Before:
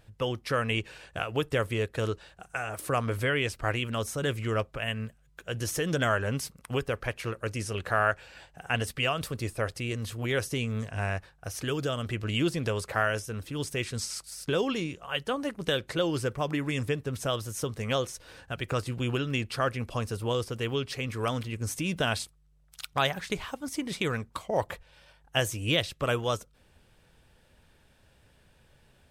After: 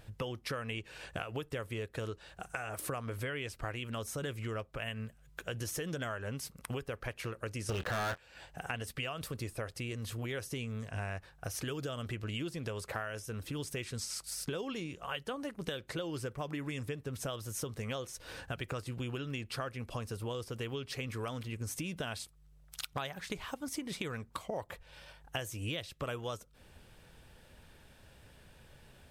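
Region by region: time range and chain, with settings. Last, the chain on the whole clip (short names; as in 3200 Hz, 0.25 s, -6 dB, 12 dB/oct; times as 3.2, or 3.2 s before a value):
7.69–8.18 running mean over 4 samples + doubler 26 ms -13 dB + sample leveller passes 5
whole clip: bell 13000 Hz +3 dB 0.33 oct; compressor 6:1, threshold -40 dBFS; gain +3.5 dB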